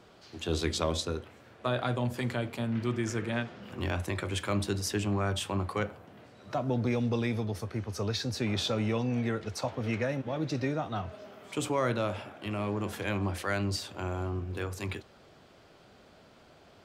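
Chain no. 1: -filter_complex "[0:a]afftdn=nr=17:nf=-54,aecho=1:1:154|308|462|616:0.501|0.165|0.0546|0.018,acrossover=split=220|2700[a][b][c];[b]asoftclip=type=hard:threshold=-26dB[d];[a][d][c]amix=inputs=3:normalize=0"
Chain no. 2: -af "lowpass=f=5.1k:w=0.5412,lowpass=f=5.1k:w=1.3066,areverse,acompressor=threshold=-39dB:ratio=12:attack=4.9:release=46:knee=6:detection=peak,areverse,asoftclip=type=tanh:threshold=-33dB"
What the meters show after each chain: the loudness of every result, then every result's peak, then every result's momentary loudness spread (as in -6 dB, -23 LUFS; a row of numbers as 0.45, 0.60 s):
-32.0, -43.5 LUFS; -17.5, -33.5 dBFS; 8, 11 LU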